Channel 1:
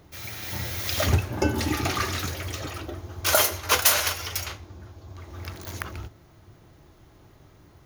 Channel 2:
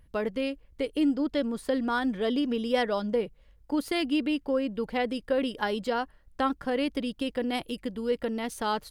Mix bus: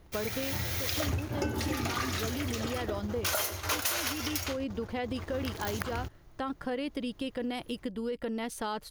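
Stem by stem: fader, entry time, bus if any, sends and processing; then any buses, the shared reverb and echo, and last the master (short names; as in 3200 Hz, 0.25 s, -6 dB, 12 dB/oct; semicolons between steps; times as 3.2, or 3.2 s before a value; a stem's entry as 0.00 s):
-3.0 dB, 0.00 s, no send, sample leveller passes 2
-0.5 dB, 0.00 s, no send, limiter -22 dBFS, peak gain reduction 7.5 dB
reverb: off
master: compressor 5:1, threshold -30 dBFS, peak gain reduction 15 dB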